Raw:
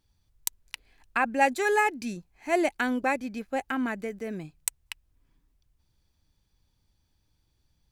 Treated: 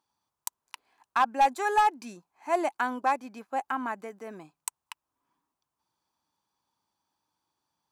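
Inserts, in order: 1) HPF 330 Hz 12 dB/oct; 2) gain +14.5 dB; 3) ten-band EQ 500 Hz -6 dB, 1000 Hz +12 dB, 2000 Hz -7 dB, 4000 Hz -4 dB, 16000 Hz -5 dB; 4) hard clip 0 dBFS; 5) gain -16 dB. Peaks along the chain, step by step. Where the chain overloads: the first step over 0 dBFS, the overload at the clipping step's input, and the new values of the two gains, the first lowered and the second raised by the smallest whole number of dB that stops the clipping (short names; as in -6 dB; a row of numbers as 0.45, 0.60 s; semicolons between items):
-8.0, +6.5, +7.5, 0.0, -16.0 dBFS; step 2, 7.5 dB; step 2 +6.5 dB, step 5 -8 dB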